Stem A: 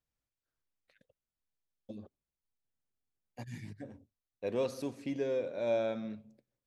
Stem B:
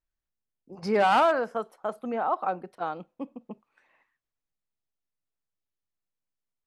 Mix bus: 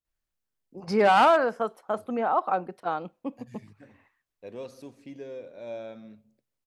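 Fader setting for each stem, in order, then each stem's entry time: -6.5 dB, +2.5 dB; 0.00 s, 0.05 s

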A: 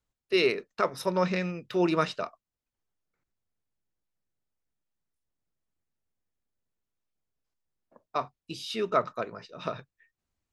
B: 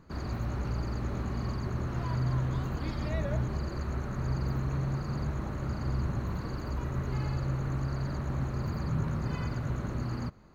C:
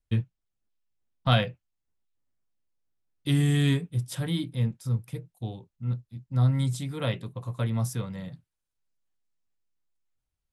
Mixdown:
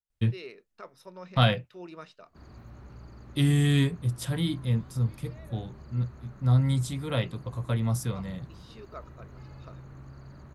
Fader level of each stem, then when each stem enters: -18.5 dB, -14.5 dB, +0.5 dB; 0.00 s, 2.25 s, 0.10 s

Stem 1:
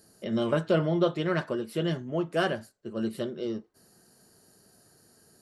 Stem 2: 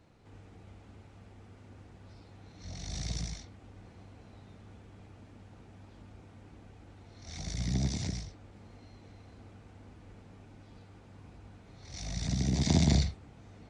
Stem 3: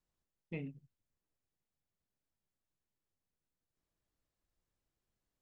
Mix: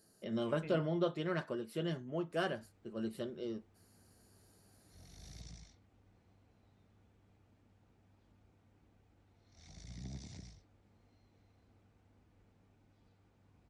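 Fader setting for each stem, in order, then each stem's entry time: -9.0 dB, -16.0 dB, -5.5 dB; 0.00 s, 2.30 s, 0.10 s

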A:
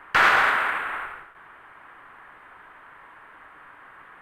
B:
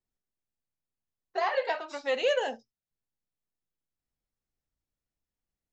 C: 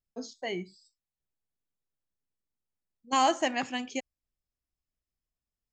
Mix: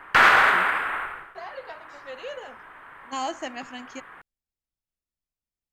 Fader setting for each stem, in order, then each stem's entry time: +2.0 dB, -10.5 dB, -5.5 dB; 0.00 s, 0.00 s, 0.00 s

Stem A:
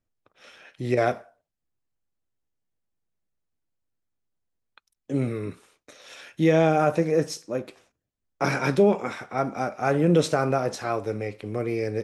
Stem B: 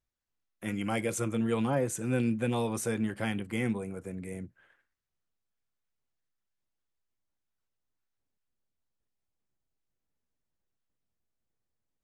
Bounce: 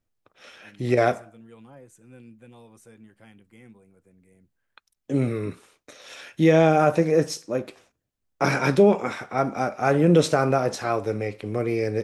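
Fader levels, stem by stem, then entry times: +2.5 dB, -19.0 dB; 0.00 s, 0.00 s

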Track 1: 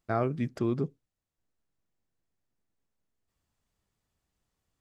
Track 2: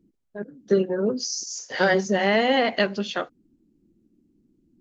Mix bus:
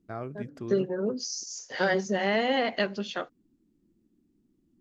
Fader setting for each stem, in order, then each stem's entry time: -8.5 dB, -5.5 dB; 0.00 s, 0.00 s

